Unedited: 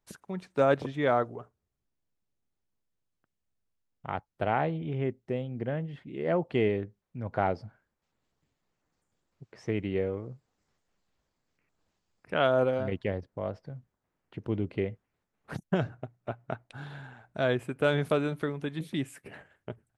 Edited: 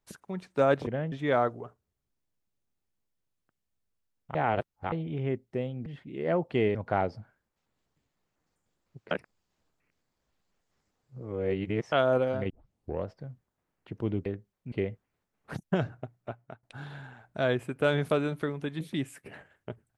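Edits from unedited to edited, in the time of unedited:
4.1–4.67 reverse
5.61–5.86 move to 0.87
6.75–7.21 move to 14.72
9.57–12.38 reverse
12.96 tape start 0.56 s
16.15–16.63 fade out, to -22.5 dB

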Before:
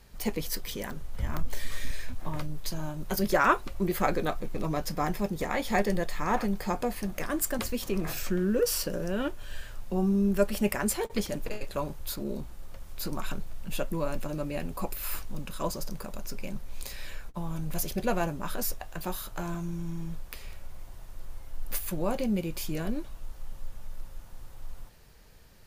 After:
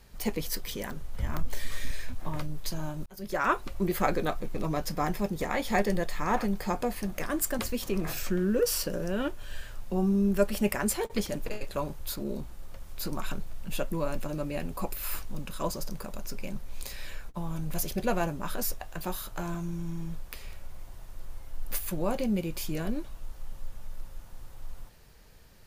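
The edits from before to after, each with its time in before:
3.06–3.69 fade in

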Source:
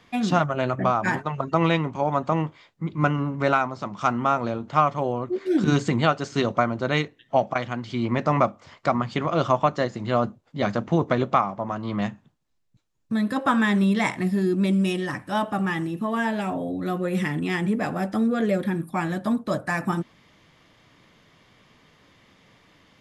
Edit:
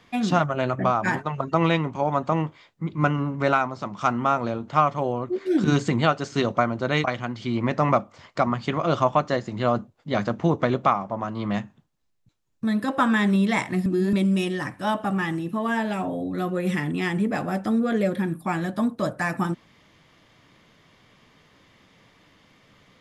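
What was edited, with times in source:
7.04–7.52 cut
14.34–14.61 reverse

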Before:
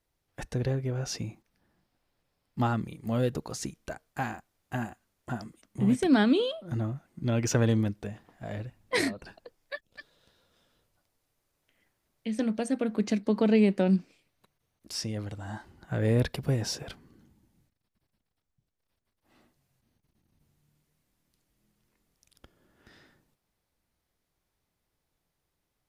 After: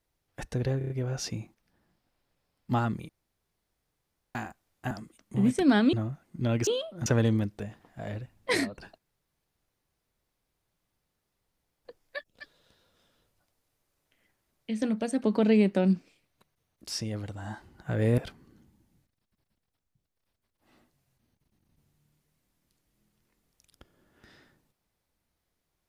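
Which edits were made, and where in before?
0.78 stutter 0.03 s, 5 plays
2.97–4.23 room tone
4.79–5.35 cut
6.37–6.76 move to 7.5
9.42 insert room tone 2.87 s
12.81–13.27 cut
16.21–16.81 cut

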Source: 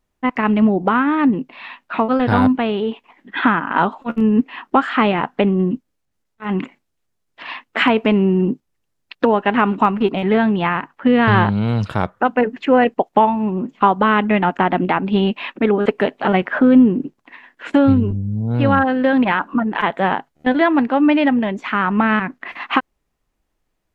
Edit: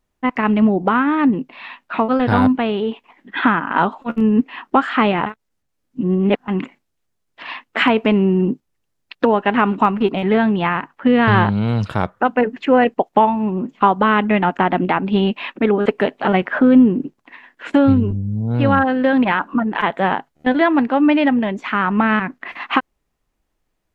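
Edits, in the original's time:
5.26–6.48 reverse

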